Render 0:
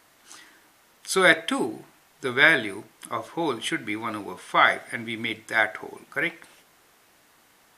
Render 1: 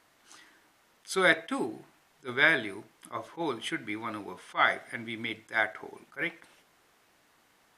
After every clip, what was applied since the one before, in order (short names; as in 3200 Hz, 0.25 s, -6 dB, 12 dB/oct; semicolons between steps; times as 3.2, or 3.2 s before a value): high shelf 8100 Hz -6.5 dB; attack slew limiter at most 370 dB/s; gain -5.5 dB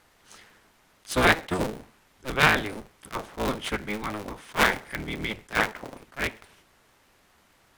cycle switcher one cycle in 3, inverted; low shelf 140 Hz +9.5 dB; gain +3 dB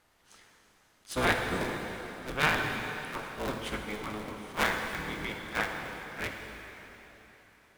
plate-style reverb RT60 3.9 s, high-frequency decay 0.9×, DRR 2.5 dB; gain -7.5 dB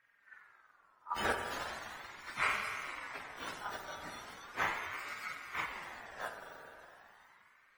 spectrum mirrored in octaves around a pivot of 1000 Hz; ring modulator with a swept carrier 1400 Hz, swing 25%, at 0.38 Hz; gain -4 dB